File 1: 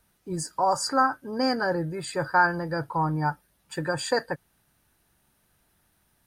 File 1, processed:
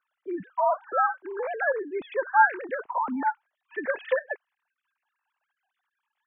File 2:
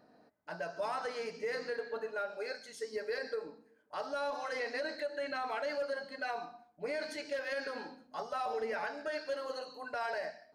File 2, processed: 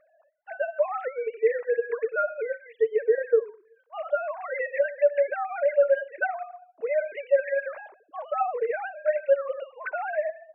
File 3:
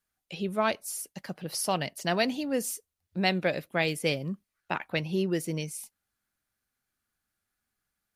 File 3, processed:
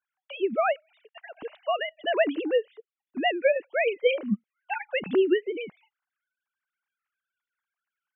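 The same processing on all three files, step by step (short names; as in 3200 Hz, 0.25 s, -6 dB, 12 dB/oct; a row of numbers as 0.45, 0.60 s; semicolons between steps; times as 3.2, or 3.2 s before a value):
sine-wave speech; match loudness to -27 LUFS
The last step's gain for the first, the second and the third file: -0.5, +11.5, +3.5 dB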